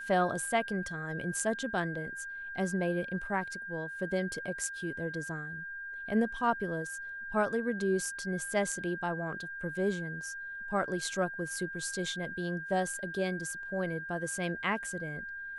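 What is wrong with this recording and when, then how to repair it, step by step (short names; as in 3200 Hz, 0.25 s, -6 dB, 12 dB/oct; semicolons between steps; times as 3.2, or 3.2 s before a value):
tone 1600 Hz -39 dBFS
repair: notch 1600 Hz, Q 30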